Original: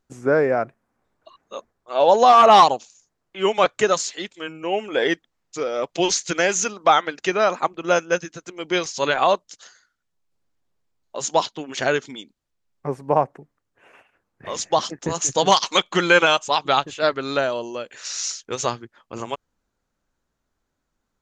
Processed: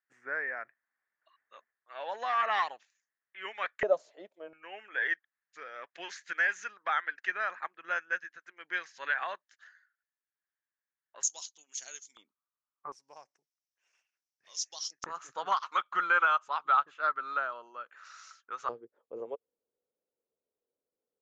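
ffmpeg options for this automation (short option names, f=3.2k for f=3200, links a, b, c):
-af "asetnsamples=n=441:p=0,asendcmd='3.83 bandpass f 610;4.53 bandpass f 1700;11.23 bandpass f 6500;12.17 bandpass f 1200;12.92 bandpass f 5600;15.04 bandpass f 1300;18.69 bandpass f 470',bandpass=f=1.8k:t=q:w=6.5:csg=0"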